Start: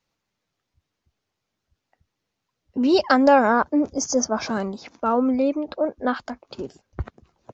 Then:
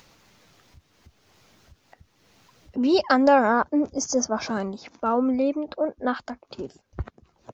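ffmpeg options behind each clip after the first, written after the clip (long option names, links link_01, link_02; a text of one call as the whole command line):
ffmpeg -i in.wav -af "acompressor=mode=upward:threshold=-35dB:ratio=2.5,volume=-2dB" out.wav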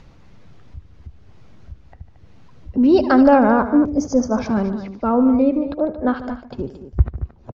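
ffmpeg -i in.wav -af "aemphasis=mode=reproduction:type=riaa,aecho=1:1:74|149|225:0.168|0.168|0.237,volume=2dB" out.wav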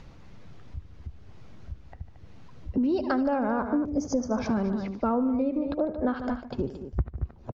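ffmpeg -i in.wav -af "acompressor=threshold=-21dB:ratio=12,volume=-1.5dB" out.wav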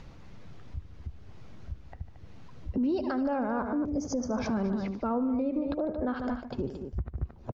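ffmpeg -i in.wav -af "alimiter=limit=-22dB:level=0:latency=1:release=82" out.wav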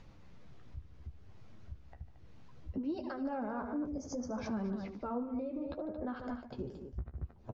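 ffmpeg -i in.wav -af "flanger=delay=9.1:depth=8:regen=-31:speed=0.66:shape=sinusoidal,volume=-4.5dB" out.wav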